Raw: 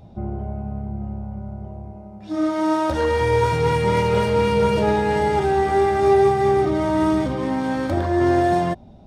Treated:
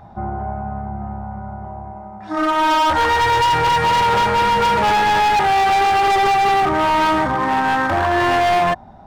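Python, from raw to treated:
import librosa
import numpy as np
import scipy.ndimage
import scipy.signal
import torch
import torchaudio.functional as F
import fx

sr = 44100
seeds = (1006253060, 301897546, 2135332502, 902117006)

y = fx.band_shelf(x, sr, hz=1200.0, db=15.0, octaves=1.7)
y = np.clip(10.0 ** (13.5 / 20.0) * y, -1.0, 1.0) / 10.0 ** (13.5 / 20.0)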